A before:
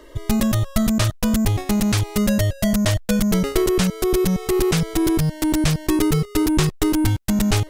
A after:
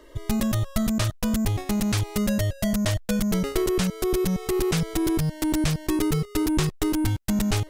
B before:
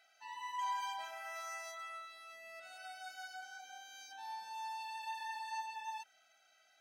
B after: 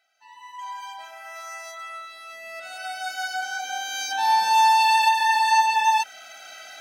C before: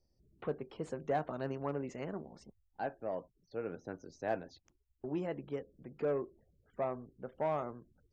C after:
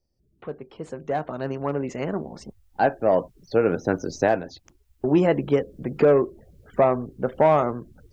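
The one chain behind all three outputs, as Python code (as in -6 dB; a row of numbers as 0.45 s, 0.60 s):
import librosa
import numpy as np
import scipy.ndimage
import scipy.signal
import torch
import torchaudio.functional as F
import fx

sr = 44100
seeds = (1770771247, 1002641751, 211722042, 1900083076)

y = fx.recorder_agc(x, sr, target_db=-8.5, rise_db_per_s=6.5, max_gain_db=30)
y = y * 10.0 ** (-24 / 20.0) / np.sqrt(np.mean(np.square(y)))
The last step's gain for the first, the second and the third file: -5.5 dB, -2.0 dB, 0.0 dB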